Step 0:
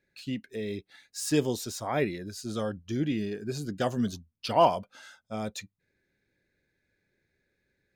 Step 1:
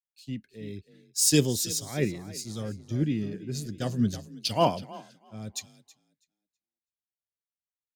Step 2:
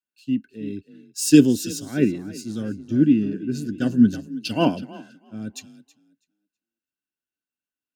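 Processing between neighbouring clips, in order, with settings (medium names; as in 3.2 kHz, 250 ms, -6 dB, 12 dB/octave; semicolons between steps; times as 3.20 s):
FFT filter 120 Hz 0 dB, 920 Hz -14 dB, 5.5 kHz 0 dB; on a send: frequency-shifting echo 325 ms, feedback 42%, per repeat +31 Hz, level -11 dB; on the sum: three bands expanded up and down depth 100%; trim +3.5 dB
small resonant body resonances 270/1500/2700 Hz, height 18 dB, ringing for 30 ms; trim -3 dB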